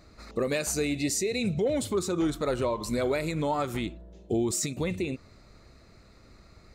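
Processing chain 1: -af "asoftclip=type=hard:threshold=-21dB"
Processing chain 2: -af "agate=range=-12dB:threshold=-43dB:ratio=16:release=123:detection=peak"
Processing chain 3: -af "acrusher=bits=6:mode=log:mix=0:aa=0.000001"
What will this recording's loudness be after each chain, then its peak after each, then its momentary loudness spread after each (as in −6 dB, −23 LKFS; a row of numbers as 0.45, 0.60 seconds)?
−29.5, −29.0, −29.0 LKFS; −21.0, −18.0, −18.0 dBFS; 7, 6, 7 LU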